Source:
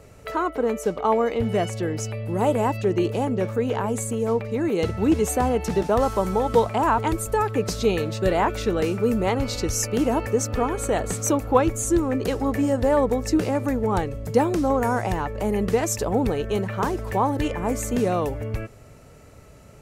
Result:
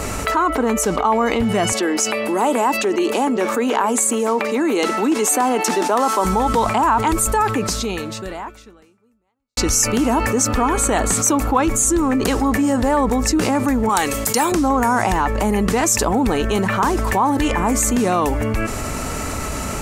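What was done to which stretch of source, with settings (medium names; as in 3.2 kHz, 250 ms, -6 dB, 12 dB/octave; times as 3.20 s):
1.72–6.25 s: high-pass 260 Hz 24 dB/octave
7.47–9.57 s: fade out exponential
13.89–14.52 s: tilt EQ +3.5 dB/octave
whole clip: graphic EQ 125/250/500/1000/8000 Hz -11/+4/-8/+5/+5 dB; level flattener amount 70%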